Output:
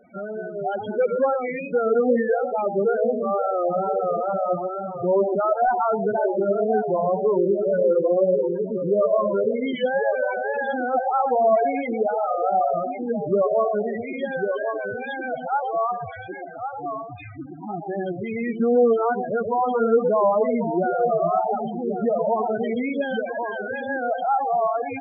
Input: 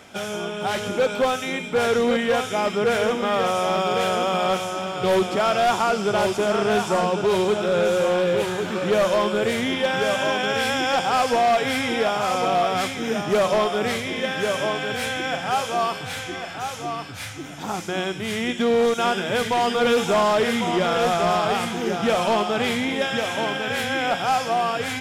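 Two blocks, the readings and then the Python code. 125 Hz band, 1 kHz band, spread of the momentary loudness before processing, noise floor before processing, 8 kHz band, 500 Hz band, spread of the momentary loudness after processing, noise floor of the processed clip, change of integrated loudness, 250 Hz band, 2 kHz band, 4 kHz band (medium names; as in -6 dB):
-4.5 dB, -1.5 dB, 7 LU, -33 dBFS, under -40 dB, +1.0 dB, 10 LU, -35 dBFS, -1.0 dB, -1.0 dB, -7.5 dB, under -20 dB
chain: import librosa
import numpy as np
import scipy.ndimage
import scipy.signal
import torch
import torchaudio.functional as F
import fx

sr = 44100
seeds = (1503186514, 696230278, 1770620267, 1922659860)

y = fx.echo_wet_bandpass(x, sr, ms=120, feedback_pct=38, hz=480.0, wet_db=-5)
y = fx.wow_flutter(y, sr, seeds[0], rate_hz=2.1, depth_cents=86.0)
y = fx.spec_topn(y, sr, count=8)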